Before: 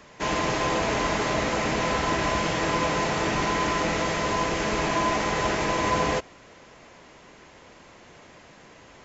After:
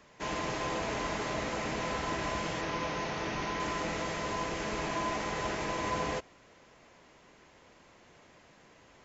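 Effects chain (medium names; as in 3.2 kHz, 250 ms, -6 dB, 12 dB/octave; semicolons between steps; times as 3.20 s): 2.61–3.60 s: elliptic low-pass 6.3 kHz, stop band 40 dB; trim -9 dB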